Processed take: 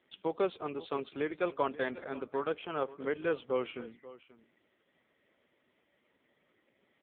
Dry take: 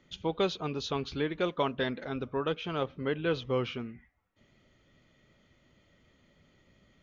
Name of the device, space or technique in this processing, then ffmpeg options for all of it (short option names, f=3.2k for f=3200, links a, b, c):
satellite phone: -af "highpass=320,lowpass=3.1k,aecho=1:1:536:0.133" -ar 8000 -c:a libopencore_amrnb -b:a 5900